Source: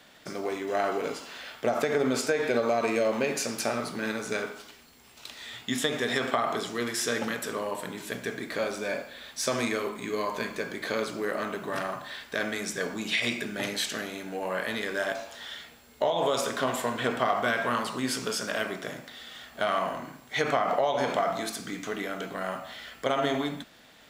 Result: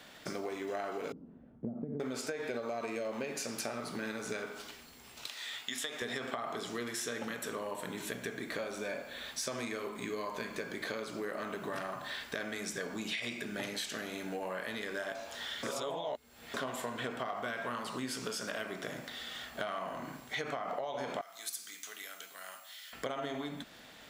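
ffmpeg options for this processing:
ffmpeg -i in.wav -filter_complex "[0:a]asettb=1/sr,asplit=3[link_01][link_02][link_03];[link_01]atrim=end=1.124[link_04];[link_02]atrim=start=1.12:end=2,asetpts=PTS-STARTPTS,afade=type=in:duration=0.004:curve=qsin,afade=type=out:start_time=0.876:duration=0.004:curve=qsin,lowpass=frequency=210:width_type=q:width=2.1[link_05];[link_03]atrim=start=1.996[link_06];[link_04][link_05]acrossfade=duration=0.004:curve1=hsin:curve2=qsin[link_07];[link_07][link_06]acrossfade=duration=0.004:curve1=qsin:curve2=hsin,asettb=1/sr,asplit=3[link_08][link_09][link_10];[link_08]atrim=end=5.274[link_11];[link_09]atrim=start=5.27:end=6.02,asetpts=PTS-STARTPTS,afade=type=in:duration=0.004:curve=qsin,afade=type=out:start_time=0.746:duration=0.004:curve=qsin,highpass=frequency=1000:poles=1[link_12];[link_10]atrim=start=6.016[link_13];[link_11][link_12]acrossfade=duration=0.004:curve1=hsin:curve2=qsin[link_14];[link_14][link_13]acrossfade=duration=0.004:curve1=qsin:curve2=hsin,asettb=1/sr,asplit=3[link_15][link_16][link_17];[link_15]atrim=end=6.904[link_18];[link_16]atrim=start=6.9:end=9.27,asetpts=PTS-STARTPTS,afade=type=in:duration=0.004:curve=qsin,afade=type=out:start_time=2.366:duration=0.004:curve=qsin,bandreject=frequency=4900:width=12[link_19];[link_17]atrim=start=9.266[link_20];[link_18][link_19]acrossfade=duration=0.004:curve1=hsin:curve2=qsin[link_21];[link_21][link_20]acrossfade=duration=0.004:curve1=qsin:curve2=hsin,asettb=1/sr,asplit=3[link_22][link_23][link_24];[link_22]atrim=end=21.214[link_25];[link_23]atrim=start=21.21:end=22.93,asetpts=PTS-STARTPTS,afade=type=in:duration=0.004:curve=qsin,afade=type=out:start_time=1.716:duration=0.004:curve=qsin,aderivative[link_26];[link_24]atrim=start=22.926[link_27];[link_25][link_26]acrossfade=duration=0.004:curve1=hsin:curve2=qsin[link_28];[link_28][link_27]acrossfade=duration=0.004:curve1=qsin:curve2=hsin,asplit=3[link_29][link_30][link_31];[link_29]atrim=end=15.632[link_32];[link_30]atrim=start=15.628:end=16.542,asetpts=PTS-STARTPTS,areverse[link_33];[link_31]atrim=start=16.538[link_34];[link_32][link_33]acrossfade=duration=0.004:curve1=hsin:curve2=hsin[link_35];[link_35][link_34]acrossfade=duration=0.004:curve1=hsin:curve2=hsin,acompressor=threshold=-37dB:ratio=5,volume=1dB" out.wav

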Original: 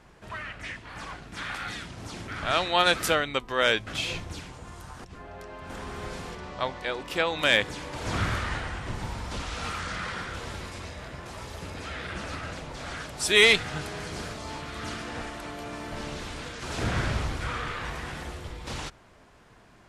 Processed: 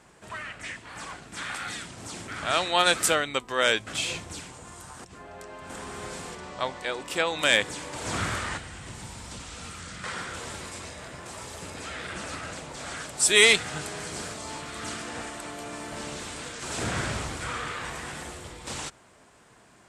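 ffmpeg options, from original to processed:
ffmpeg -i in.wav -filter_complex "[0:a]asettb=1/sr,asplit=3[link_01][link_02][link_03];[link_01]atrim=end=8.574[link_04];[link_02]atrim=start=8.57:end=10.04,asetpts=PTS-STARTPTS,afade=type=in:duration=0.004:curve=qsin,afade=type=out:start_time=1.466:duration=0.004:curve=qsin,acrossover=split=220|480|2200[link_05][link_06][link_07][link_08];[link_05]acompressor=threshold=-34dB:ratio=3[link_09];[link_06]acompressor=threshold=-54dB:ratio=3[link_10];[link_07]acompressor=threshold=-50dB:ratio=3[link_11];[link_08]acompressor=threshold=-47dB:ratio=3[link_12];[link_09][link_10][link_11][link_12]amix=inputs=4:normalize=0[link_13];[link_03]atrim=start=10.036[link_14];[link_04][link_13]acrossfade=duration=0.004:curve1=hsin:curve2=qsin[link_15];[link_15][link_14]acrossfade=duration=0.004:curve1=qsin:curve2=hsin,highpass=frequency=140:poles=1,equalizer=frequency=8100:width=1.9:gain=11.5" out.wav

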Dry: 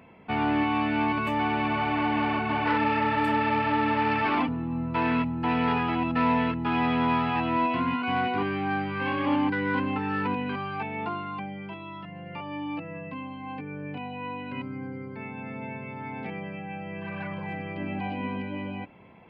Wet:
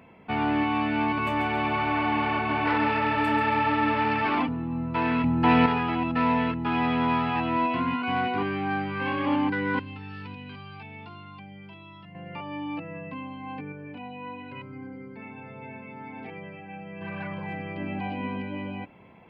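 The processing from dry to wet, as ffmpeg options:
ffmpeg -i in.wav -filter_complex "[0:a]asettb=1/sr,asplit=3[link_01][link_02][link_03];[link_01]atrim=end=1.054[link_04];[link_02]atrim=start=1.05:end=4.05,asetpts=PTS-STARTPTS,afade=type=in:duration=0.004:curve=qsin,afade=type=out:start_time=2.996:duration=0.004:curve=qsin,aecho=1:1:138|276|414|552|690:0.422|0.194|0.0892|0.041|0.0189,atrim=end_sample=132300[link_05];[link_03]atrim=start=4.046[link_06];[link_04][link_05]acrossfade=duration=0.004:curve1=hsin:curve2=qsin[link_07];[link_07][link_06]acrossfade=duration=0.004:curve1=qsin:curve2=hsin,asettb=1/sr,asplit=3[link_08][link_09][link_10];[link_08]atrim=end=9.794[link_11];[link_09]atrim=start=9.79:end=12.15,asetpts=PTS-STARTPTS,afade=type=in:duration=0.004:curve=qsin,afade=type=out:start_time=2.356:duration=0.004:curve=qsin,acrossover=split=130|3000[link_12][link_13][link_14];[link_13]acompressor=threshold=-51dB:ratio=2.5:attack=3.2:release=140:knee=2.83:detection=peak[link_15];[link_12][link_15][link_14]amix=inputs=3:normalize=0[link_16];[link_10]atrim=start=12.146[link_17];[link_11][link_16]acrossfade=duration=0.004:curve1=hsin:curve2=qsin[link_18];[link_18][link_17]acrossfade=duration=0.004:curve1=qsin:curve2=hsin,asettb=1/sr,asplit=3[link_19][link_20][link_21];[link_19]atrim=end=13.724[link_22];[link_20]atrim=start=13.72:end=17.01,asetpts=PTS-STARTPTS,afade=type=in:duration=0.004:curve=qsin,afade=type=out:start_time=3.286:duration=0.004:curve=qsin,flanger=delay=2:depth=2.4:regen=-42:speed=1.1:shape=sinusoidal[link_23];[link_21]atrim=start=17.006[link_24];[link_22][link_23]acrossfade=duration=0.004:curve1=hsin:curve2=qsin[link_25];[link_25][link_24]acrossfade=duration=0.004:curve1=qsin:curve2=hsin,asplit=3[link_26][link_27][link_28];[link_26]atrim=end=5.242[link_29];[link_27]atrim=start=5.238:end=5.662,asetpts=PTS-STARTPTS,volume=6.5dB[link_30];[link_28]atrim=start=5.658[link_31];[link_29][link_30]acrossfade=duration=0.004:curve1=hsin:curve2=hsin[link_32];[link_32][link_31]acrossfade=duration=0.004:curve1=hsin:curve2=hsin" out.wav

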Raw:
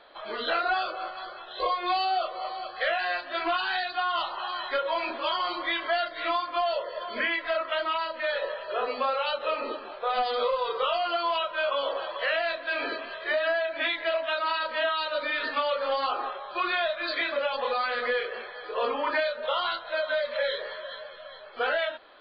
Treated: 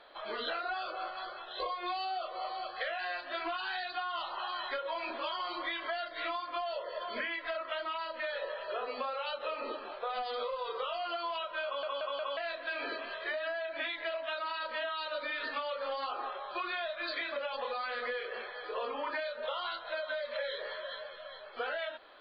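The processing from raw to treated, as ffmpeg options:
ffmpeg -i in.wav -filter_complex "[0:a]asplit=5[link_01][link_02][link_03][link_04][link_05];[link_01]atrim=end=11.832[link_06];[link_02]atrim=start=11.648:end=11.832[link_07];[link_03]atrim=start=11.648:end=11.832[link_08];[link_04]atrim=start=11.648:end=11.832[link_09];[link_05]atrim=start=12.368[link_10];[link_06][link_07]acrossfade=duration=0.004:curve1=hsin:curve2=hsin[link_11];[link_11][link_08]acrossfade=duration=0.004:curve1=hsin:curve2=hsin[link_12];[link_12][link_09]acrossfade=duration=0.004:curve1=hsin:curve2=hsin[link_13];[link_13][link_10]acrossfade=duration=0.004:curve1=hsin:curve2=hsin,equalizer=frequency=140:width_type=o:width=2.4:gain=-2.5,acompressor=threshold=-31dB:ratio=6,volume=-2.5dB" out.wav

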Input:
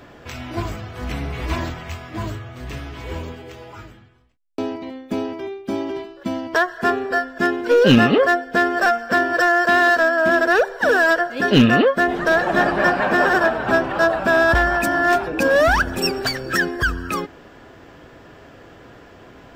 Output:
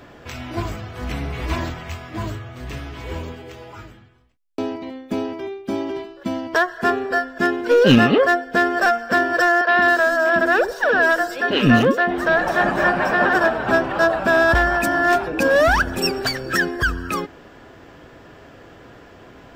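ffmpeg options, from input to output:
ffmpeg -i in.wav -filter_complex "[0:a]asettb=1/sr,asplit=3[link_01][link_02][link_03];[link_01]atrim=end=9.614[link_04];[link_02]atrim=start=9.61:end=13.35,asetpts=PTS-STARTPTS,afade=type=in:duration=0.004:curve=qsin,afade=type=out:start_time=3.736:duration=0.004:curve=qsin,acrossover=split=360|4600[link_05][link_06][link_07];[link_05]adelay=100[link_08];[link_07]adelay=210[link_09];[link_08][link_06][link_09]amix=inputs=3:normalize=0,atrim=end_sample=164934[link_10];[link_03]atrim=start=13.346[link_11];[link_04][link_10]acrossfade=duration=0.004:curve1=hsin:curve2=qsin[link_12];[link_12][link_11]acrossfade=duration=0.004:curve1=qsin:curve2=hsin" out.wav

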